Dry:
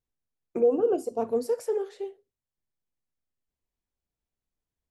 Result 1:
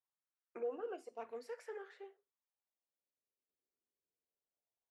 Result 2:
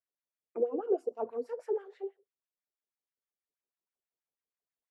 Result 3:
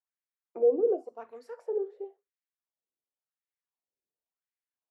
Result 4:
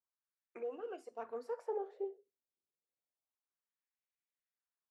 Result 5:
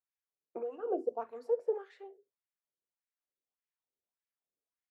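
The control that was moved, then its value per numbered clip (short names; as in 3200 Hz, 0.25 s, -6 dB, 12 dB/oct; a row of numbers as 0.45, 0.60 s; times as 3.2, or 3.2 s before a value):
wah, rate: 0.2, 6.2, 0.93, 0.3, 1.7 Hz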